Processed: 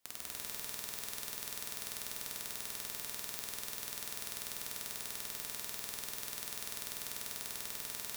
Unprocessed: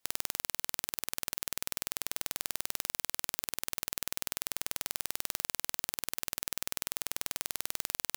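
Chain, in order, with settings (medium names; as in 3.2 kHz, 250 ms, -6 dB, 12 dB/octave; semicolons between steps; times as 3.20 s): gated-style reverb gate 480 ms flat, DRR 5 dB; saturation -13.5 dBFS, distortion -6 dB; trim -1 dB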